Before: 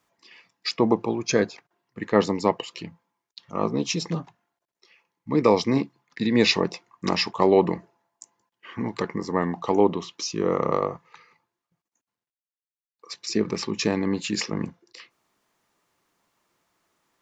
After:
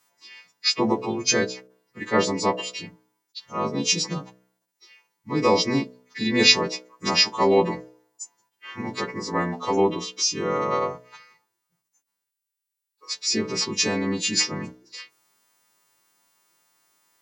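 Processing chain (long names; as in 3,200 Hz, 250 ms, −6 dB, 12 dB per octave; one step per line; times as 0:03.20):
every partial snapped to a pitch grid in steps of 2 semitones
hum removal 62.58 Hz, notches 11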